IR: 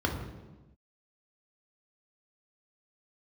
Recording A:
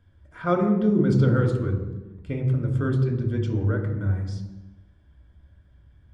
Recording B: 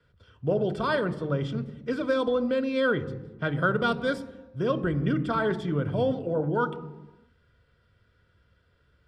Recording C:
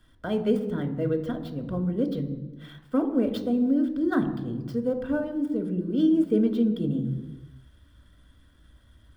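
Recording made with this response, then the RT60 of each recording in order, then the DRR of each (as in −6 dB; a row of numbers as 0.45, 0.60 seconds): A; non-exponential decay, 1.1 s, 1.1 s; 1.5, 11.5, 6.5 decibels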